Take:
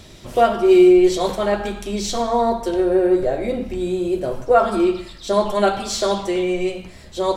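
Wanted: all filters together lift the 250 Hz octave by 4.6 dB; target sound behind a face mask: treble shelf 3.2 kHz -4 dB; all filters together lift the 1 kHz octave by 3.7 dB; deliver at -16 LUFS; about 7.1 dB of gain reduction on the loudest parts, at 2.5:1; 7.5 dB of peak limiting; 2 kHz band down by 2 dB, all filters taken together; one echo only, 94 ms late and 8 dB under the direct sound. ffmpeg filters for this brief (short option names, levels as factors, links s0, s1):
-af "equalizer=f=250:t=o:g=8,equalizer=f=1000:t=o:g=6,equalizer=f=2000:t=o:g=-4,acompressor=threshold=0.178:ratio=2.5,alimiter=limit=0.237:level=0:latency=1,highshelf=f=3200:g=-4,aecho=1:1:94:0.398,volume=1.68"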